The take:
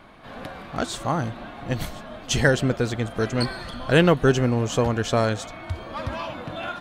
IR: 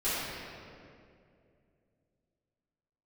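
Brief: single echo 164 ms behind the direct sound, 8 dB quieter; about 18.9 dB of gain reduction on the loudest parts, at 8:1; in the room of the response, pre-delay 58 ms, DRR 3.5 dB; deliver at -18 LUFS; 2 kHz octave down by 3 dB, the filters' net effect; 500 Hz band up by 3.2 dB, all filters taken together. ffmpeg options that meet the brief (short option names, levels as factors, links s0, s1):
-filter_complex "[0:a]equalizer=f=500:t=o:g=4,equalizer=f=2000:t=o:g=-4.5,acompressor=threshold=0.0282:ratio=8,aecho=1:1:164:0.398,asplit=2[s0][s1];[1:a]atrim=start_sample=2205,adelay=58[s2];[s1][s2]afir=irnorm=-1:irlink=0,volume=0.211[s3];[s0][s3]amix=inputs=2:normalize=0,volume=5.96"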